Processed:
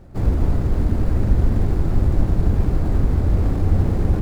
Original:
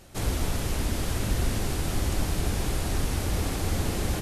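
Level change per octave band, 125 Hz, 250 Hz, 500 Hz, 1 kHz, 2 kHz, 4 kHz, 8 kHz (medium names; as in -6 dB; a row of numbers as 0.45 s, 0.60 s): +10.5 dB, +8.0 dB, +5.0 dB, +1.0 dB, -4.5 dB, under -10 dB, under -15 dB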